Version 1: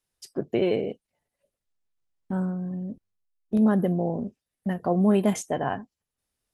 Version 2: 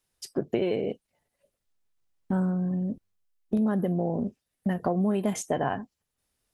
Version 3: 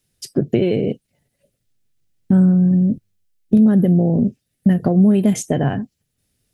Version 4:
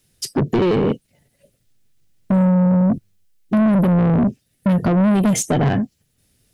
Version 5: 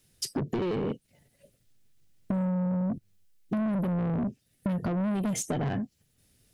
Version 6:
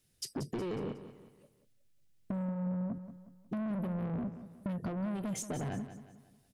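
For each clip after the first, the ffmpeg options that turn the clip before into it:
ffmpeg -i in.wav -af "acompressor=threshold=-27dB:ratio=6,volume=4dB" out.wav
ffmpeg -i in.wav -af "equalizer=frequency=125:width_type=o:width=1:gain=10,equalizer=frequency=250:width_type=o:width=1:gain=3,equalizer=frequency=1000:width_type=o:width=1:gain=-11,volume=8dB" out.wav
ffmpeg -i in.wav -af "asoftclip=type=tanh:threshold=-20dB,volume=7dB" out.wav
ffmpeg -i in.wav -af "acompressor=threshold=-25dB:ratio=6,volume=-3.5dB" out.wav
ffmpeg -i in.wav -af "aecho=1:1:182|364|546|728:0.251|0.105|0.0443|0.0186,volume=-7.5dB" out.wav

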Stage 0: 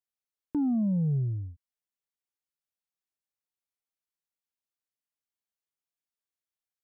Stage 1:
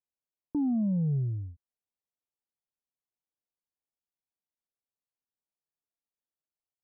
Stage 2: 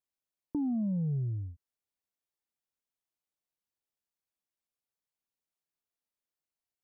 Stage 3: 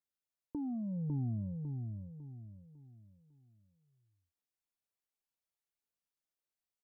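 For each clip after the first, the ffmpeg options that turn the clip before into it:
ffmpeg -i in.wav -af "lowpass=frequency=1000:width=0.5412,lowpass=frequency=1000:width=1.3066,volume=-1dB" out.wav
ffmpeg -i in.wav -af "acompressor=threshold=-32dB:ratio=2" out.wav
ffmpeg -i in.wav -af "aphaser=in_gain=1:out_gain=1:delay=2.7:decay=0.24:speed=0.68:type=triangular,aecho=1:1:551|1102|1653|2204|2755:0.631|0.227|0.0818|0.0294|0.0106,volume=-5.5dB" out.wav

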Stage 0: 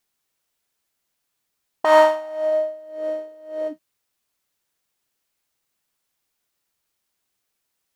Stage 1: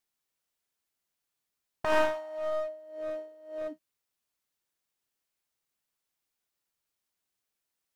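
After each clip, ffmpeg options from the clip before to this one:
ffmpeg -i in.wav -af "aeval=exprs='clip(val(0),-1,0.0531)':channel_layout=same,volume=-8.5dB" out.wav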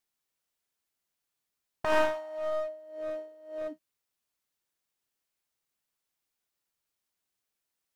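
ffmpeg -i in.wav -af anull out.wav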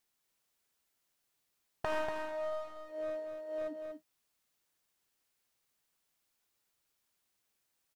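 ffmpeg -i in.wav -af "acompressor=threshold=-41dB:ratio=2.5,aecho=1:1:239:0.501,volume=3.5dB" out.wav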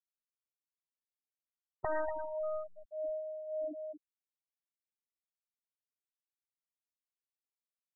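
ffmpeg -i in.wav -af "acrusher=bits=6:mode=log:mix=0:aa=0.000001,afftfilt=real='re*gte(hypot(re,im),0.0398)':imag='im*gte(hypot(re,im),0.0398)':win_size=1024:overlap=0.75,volume=1dB" out.wav

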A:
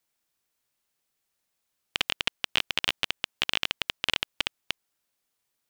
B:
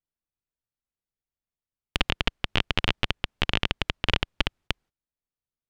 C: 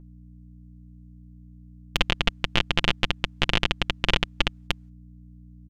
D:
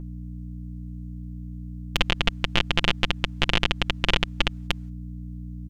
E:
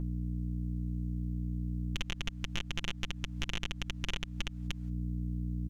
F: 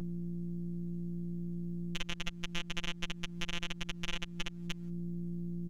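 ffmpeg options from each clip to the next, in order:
ffmpeg -i in.wav -af "aemphasis=mode=reproduction:type=riaa,agate=range=-21dB:threshold=-57dB:ratio=16:detection=peak,volume=5dB" out.wav
ffmpeg -i in.wav -af "equalizer=frequency=6800:width=2:gain=3.5,aeval=exprs='val(0)+0.00501*(sin(2*PI*60*n/s)+sin(2*PI*2*60*n/s)/2+sin(2*PI*3*60*n/s)/3+sin(2*PI*4*60*n/s)/4+sin(2*PI*5*60*n/s)/5)':channel_layout=same,aecho=1:1:5.8:0.48,volume=1dB" out.wav
ffmpeg -i in.wav -af "alimiter=level_in=12.5dB:limit=-1dB:release=50:level=0:latency=1,volume=-1dB" out.wav
ffmpeg -i in.wav -af "acompressor=threshold=-30dB:ratio=3,aeval=exprs='(tanh(7.94*val(0)+0.6)-tanh(0.6))/7.94':channel_layout=same,volume=4dB" out.wav
ffmpeg -i in.wav -af "afftfilt=real='hypot(re,im)*cos(PI*b)':imag='0':win_size=1024:overlap=0.75,volume=1.5dB" out.wav

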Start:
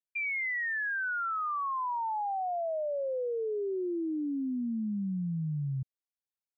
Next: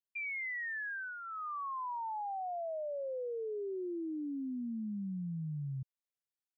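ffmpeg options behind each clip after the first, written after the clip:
ffmpeg -i in.wav -af "equalizer=frequency=1400:width=6.8:gain=-7,volume=-6dB" out.wav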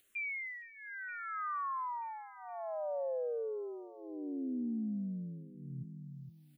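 ffmpeg -i in.wav -filter_complex "[0:a]acompressor=mode=upward:threshold=-52dB:ratio=2.5,asplit=2[link_01][link_02];[link_02]aecho=0:1:466|932|1398|1864|2330:0.237|0.121|0.0617|0.0315|0.016[link_03];[link_01][link_03]amix=inputs=2:normalize=0,asplit=2[link_04][link_05];[link_05]afreqshift=-0.91[link_06];[link_04][link_06]amix=inputs=2:normalize=1,volume=2.5dB" out.wav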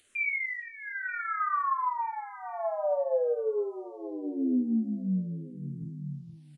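ffmpeg -i in.wav -filter_complex "[0:a]asplit=2[link_01][link_02];[link_02]adelay=27,volume=-10.5dB[link_03];[link_01][link_03]amix=inputs=2:normalize=0,asplit=2[link_04][link_05];[link_05]aecho=0:1:12|48:0.398|0.447[link_06];[link_04][link_06]amix=inputs=2:normalize=0,aresample=22050,aresample=44100,volume=7dB" out.wav

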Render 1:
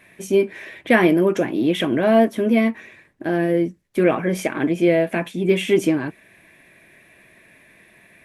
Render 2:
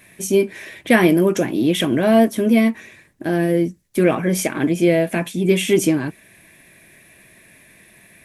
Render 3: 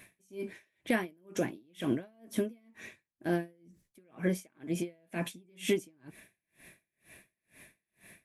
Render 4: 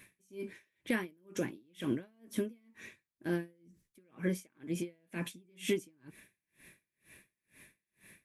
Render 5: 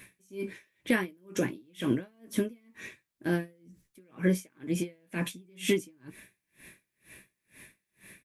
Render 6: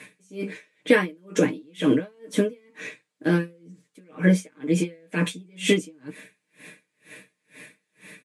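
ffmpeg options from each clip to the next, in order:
ffmpeg -i in.wav -af "bass=frequency=250:gain=5,treble=frequency=4000:gain=11" out.wav
ffmpeg -i in.wav -af "acompressor=threshold=-19dB:ratio=12,aeval=exprs='val(0)*pow(10,-38*(0.5-0.5*cos(2*PI*2.1*n/s))/20)':channel_layout=same,volume=-4.5dB" out.wav
ffmpeg -i in.wav -af "equalizer=frequency=690:width=3.8:gain=-10,volume=-2.5dB" out.wav
ffmpeg -i in.wav -filter_complex "[0:a]asplit=2[link_01][link_02];[link_02]adelay=16,volume=-11dB[link_03];[link_01][link_03]amix=inputs=2:normalize=0,volume=6dB" out.wav
ffmpeg -i in.wav -af "highpass=frequency=150:width=0.5412,highpass=frequency=150:width=1.3066,equalizer=frequency=150:width_type=q:width=4:gain=-4,equalizer=frequency=230:width_type=q:width=4:gain=5,equalizer=frequency=320:width_type=q:width=4:gain=-3,equalizer=frequency=480:width_type=q:width=4:gain=7,equalizer=frequency=5600:width_type=q:width=4:gain=-4,lowpass=frequency=8900:width=0.5412,lowpass=frequency=8900:width=1.3066,aecho=1:1:6.6:0.88,volume=6dB" out.wav

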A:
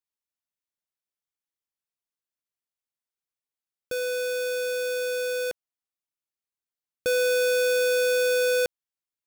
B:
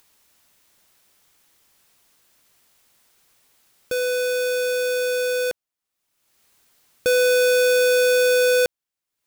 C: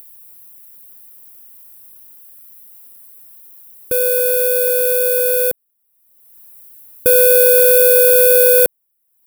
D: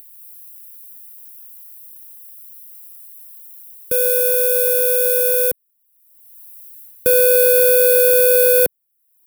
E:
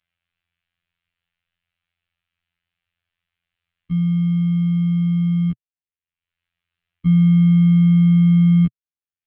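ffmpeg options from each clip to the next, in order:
ffmpeg -i in.wav -af "acompressor=mode=upward:threshold=-46dB:ratio=2.5,volume=5.5dB" out.wav
ffmpeg -i in.wav -af "aexciter=amount=13.3:drive=5.2:freq=9200,tiltshelf=frequency=780:gain=6,volume=3dB" out.wav
ffmpeg -i in.wav -filter_complex "[0:a]acrossover=split=220|1300|4100[link_01][link_02][link_03][link_04];[link_02]acrusher=bits=5:mix=0:aa=0.000001[link_05];[link_04]dynaudnorm=framelen=120:gausssize=3:maxgain=4dB[link_06];[link_01][link_05][link_03][link_06]amix=inputs=4:normalize=0,volume=-2dB" out.wav
ffmpeg -i in.wav -af "highpass=frequency=260:width_type=q:width=0.5412,highpass=frequency=260:width_type=q:width=1.307,lowpass=frequency=3200:width_type=q:width=0.5176,lowpass=frequency=3200:width_type=q:width=0.7071,lowpass=frequency=3200:width_type=q:width=1.932,afreqshift=-320,afftfilt=real='hypot(re,im)*cos(PI*b)':imag='0':win_size=2048:overlap=0.75,equalizer=frequency=125:width_type=o:width=1:gain=6,equalizer=frequency=500:width_type=o:width=1:gain=-4,equalizer=frequency=1000:width_type=o:width=1:gain=-11,equalizer=frequency=2000:width_type=o:width=1:gain=-4" out.wav

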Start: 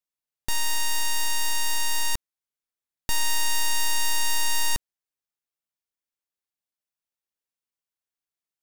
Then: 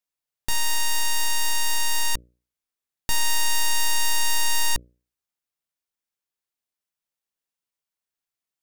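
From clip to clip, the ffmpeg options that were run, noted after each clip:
ffmpeg -i in.wav -af "bandreject=frequency=60:width_type=h:width=6,bandreject=frequency=120:width_type=h:width=6,bandreject=frequency=180:width_type=h:width=6,bandreject=frequency=240:width_type=h:width=6,bandreject=frequency=300:width_type=h:width=6,bandreject=frequency=360:width_type=h:width=6,bandreject=frequency=420:width_type=h:width=6,bandreject=frequency=480:width_type=h:width=6,bandreject=frequency=540:width_type=h:width=6,bandreject=frequency=600:width_type=h:width=6,volume=2dB" out.wav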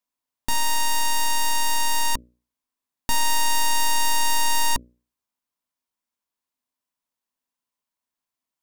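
ffmpeg -i in.wav -af "equalizer=frequency=250:width_type=o:width=0.33:gain=12,equalizer=frequency=630:width_type=o:width=0.33:gain=3,equalizer=frequency=1000:width_type=o:width=0.33:gain=10" out.wav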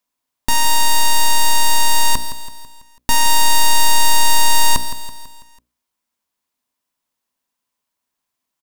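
ffmpeg -i in.wav -af "aecho=1:1:165|330|495|660|825:0.251|0.128|0.0653|0.0333|0.017,volume=7.5dB" out.wav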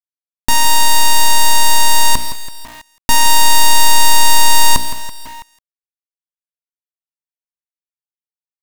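ffmpeg -i in.wav -af "acrusher=bits=7:dc=4:mix=0:aa=0.000001,volume=3.5dB" out.wav

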